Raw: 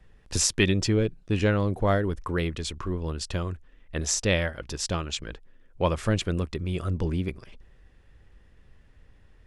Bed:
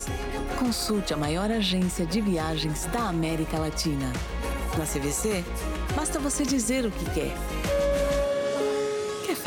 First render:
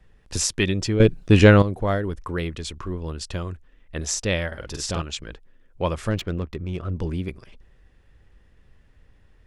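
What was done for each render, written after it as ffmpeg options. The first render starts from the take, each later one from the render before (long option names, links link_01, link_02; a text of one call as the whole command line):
ffmpeg -i in.wav -filter_complex "[0:a]asettb=1/sr,asplit=3[link_01][link_02][link_03];[link_01]atrim=end=4.474[link_04];[link_02]atrim=start=4.47:end=5.02,asetpts=PTS-STARTPTS,afade=type=in:duration=0.004:curve=qsin,afade=type=out:start_time=0.546:duration=0.004:curve=qsin,asplit=2[link_05][link_06];[link_06]adelay=48,volume=-3dB[link_07];[link_05][link_07]amix=inputs=2:normalize=0,atrim=end_sample=24255[link_08];[link_03]atrim=start=5.016[link_09];[link_04][link_08]acrossfade=duration=0.004:curve1=hsin:curve2=qsin[link_10];[link_10][link_09]acrossfade=duration=0.004:curve1=qsin:curve2=hsin,asettb=1/sr,asplit=3[link_11][link_12][link_13];[link_11]atrim=end=6.114[link_14];[link_12]atrim=start=6.11:end=6.96,asetpts=PTS-STARTPTS,afade=type=in:duration=0.004:curve=qsin,afade=type=out:start_time=0.846:duration=0.004:curve=qsin,adynamicsmooth=sensitivity=4:basefreq=2100[link_15];[link_13]atrim=start=6.956[link_16];[link_14][link_15]acrossfade=duration=0.004:curve1=hsin:curve2=qsin[link_17];[link_17][link_16]acrossfade=duration=0.004:curve1=qsin:curve2=hsin,asplit=3[link_18][link_19][link_20];[link_18]atrim=end=1.002[link_21];[link_19]atrim=start=0.998:end=1.622,asetpts=PTS-STARTPTS,volume=11dB[link_22];[link_20]atrim=start=1.618[link_23];[link_21][link_22]acrossfade=duration=0.004:curve1=hsin:curve2=hsin[link_24];[link_24][link_23]acrossfade=duration=0.004:curve1=hsin:curve2=hsin" out.wav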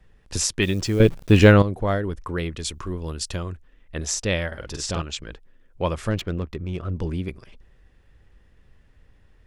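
ffmpeg -i in.wav -filter_complex "[0:a]asettb=1/sr,asplit=3[link_01][link_02][link_03];[link_01]atrim=end=0.624[link_04];[link_02]atrim=start=0.62:end=1.52,asetpts=PTS-STARTPTS,afade=type=in:duration=0.004:curve=qsin,afade=type=out:start_time=0.896:duration=0.004:curve=qsin,acrusher=bits=8:dc=4:mix=0:aa=0.000001[link_05];[link_03]atrim=start=1.516[link_06];[link_04][link_05]acrossfade=duration=0.004:curve1=hsin:curve2=qsin[link_07];[link_07][link_06]acrossfade=duration=0.004:curve1=qsin:curve2=hsin,asettb=1/sr,asplit=3[link_08][link_09][link_10];[link_08]atrim=end=2.594[link_11];[link_09]atrim=start=2.59:end=3.36,asetpts=PTS-STARTPTS,afade=type=in:duration=0.004:curve=qsin,afade=type=out:start_time=0.766:duration=0.004:curve=qsin,highshelf=frequency=6000:gain=10.5[link_12];[link_10]atrim=start=3.356[link_13];[link_11][link_12]acrossfade=duration=0.004:curve1=hsin:curve2=qsin[link_14];[link_14][link_13]acrossfade=duration=0.004:curve1=qsin:curve2=hsin,asettb=1/sr,asplit=3[link_15][link_16][link_17];[link_15]atrim=end=4.724[link_18];[link_16]atrim=start=4.72:end=5.28,asetpts=PTS-STARTPTS,afade=type=in:duration=0.004:curve=qsin,afade=type=out:start_time=0.556:duration=0.004:curve=qsin,lowpass=frequency=10000:width=0.5412,lowpass=frequency=10000:width=1.3066[link_19];[link_17]atrim=start=5.276[link_20];[link_18][link_19]acrossfade=duration=0.004:curve1=hsin:curve2=qsin[link_21];[link_21][link_20]acrossfade=duration=0.004:curve1=qsin:curve2=hsin" out.wav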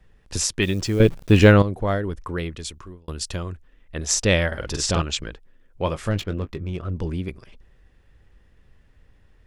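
ffmpeg -i in.wav -filter_complex "[0:a]asplit=3[link_01][link_02][link_03];[link_01]afade=type=out:start_time=4.09:duration=0.02[link_04];[link_02]acontrast=32,afade=type=in:start_time=4.09:duration=0.02,afade=type=out:start_time=5.28:duration=0.02[link_05];[link_03]afade=type=in:start_time=5.28:duration=0.02[link_06];[link_04][link_05][link_06]amix=inputs=3:normalize=0,asettb=1/sr,asplit=3[link_07][link_08][link_09];[link_07]atrim=end=5.844[link_10];[link_08]atrim=start=5.84:end=6.7,asetpts=PTS-STARTPTS,afade=type=in:duration=0.004:curve=qsin,afade=type=out:start_time=0.856:duration=0.004:curve=qsin,asplit=2[link_11][link_12];[link_12]adelay=20,volume=-9.5dB[link_13];[link_11][link_13]amix=inputs=2:normalize=0,atrim=end_sample=37926[link_14];[link_09]atrim=start=6.696[link_15];[link_10][link_14]acrossfade=duration=0.004:curve1=hsin:curve2=qsin[link_16];[link_16][link_15]acrossfade=duration=0.004:curve1=qsin:curve2=hsin,asplit=2[link_17][link_18];[link_17]atrim=end=3.08,asetpts=PTS-STARTPTS,afade=type=out:start_time=2.17:duration=0.91:curve=qsin[link_19];[link_18]atrim=start=3.08,asetpts=PTS-STARTPTS,afade=type=in:duration=0.004:curve=hsin[link_20];[link_19][link_20]concat=n=2:v=0:a=1" out.wav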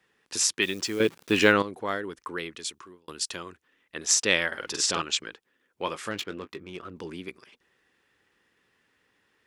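ffmpeg -i in.wav -af "highpass=390,equalizer=frequency=620:width_type=o:width=0.8:gain=-9" out.wav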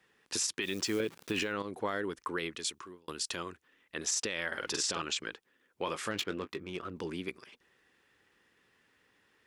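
ffmpeg -i in.wav -af "acompressor=threshold=-24dB:ratio=4,alimiter=limit=-22dB:level=0:latency=1:release=38" out.wav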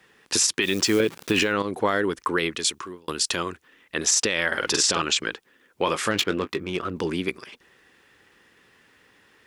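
ffmpeg -i in.wav -af "volume=11.5dB" out.wav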